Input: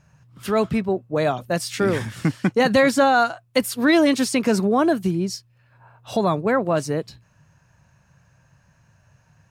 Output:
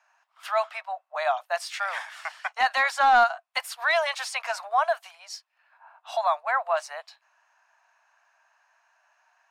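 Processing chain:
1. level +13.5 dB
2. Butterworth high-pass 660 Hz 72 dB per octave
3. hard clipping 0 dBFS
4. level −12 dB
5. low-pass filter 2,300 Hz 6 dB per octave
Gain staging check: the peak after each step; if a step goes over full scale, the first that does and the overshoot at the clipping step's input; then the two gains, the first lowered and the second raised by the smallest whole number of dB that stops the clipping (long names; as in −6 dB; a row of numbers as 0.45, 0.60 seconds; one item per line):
+7.0, +4.5, 0.0, −12.0, −12.0 dBFS
step 1, 4.5 dB
step 1 +8.5 dB, step 4 −7 dB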